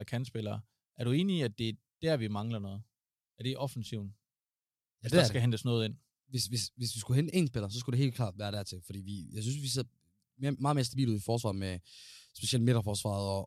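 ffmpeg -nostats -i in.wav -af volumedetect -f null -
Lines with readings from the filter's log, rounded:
mean_volume: -33.7 dB
max_volume: -10.7 dB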